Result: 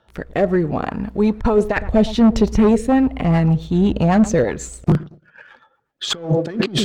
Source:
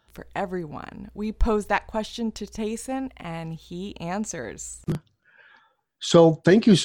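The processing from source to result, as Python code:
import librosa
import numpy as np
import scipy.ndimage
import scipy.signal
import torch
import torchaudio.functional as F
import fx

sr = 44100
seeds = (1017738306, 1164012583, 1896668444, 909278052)

y = fx.notch(x, sr, hz=1600.0, q=24.0)
y = fx.echo_filtered(y, sr, ms=112, feedback_pct=27, hz=950.0, wet_db=-19)
y = fx.over_compress(y, sr, threshold_db=-23.0, ratio=-0.5)
y = fx.low_shelf(y, sr, hz=270.0, db=9.0, at=(1.76, 4.44))
y = fx.clip_asym(y, sr, top_db=-17.5, bottom_db=-12.5)
y = fx.rotary_switch(y, sr, hz=0.7, then_hz=8.0, switch_at_s=2.56)
y = fx.leveller(y, sr, passes=1)
y = fx.high_shelf(y, sr, hz=4400.0, db=-12.0)
y = fx.bell_lfo(y, sr, hz=2.5, low_hz=480.0, high_hz=1700.0, db=7)
y = F.gain(torch.from_numpy(y), 7.0).numpy()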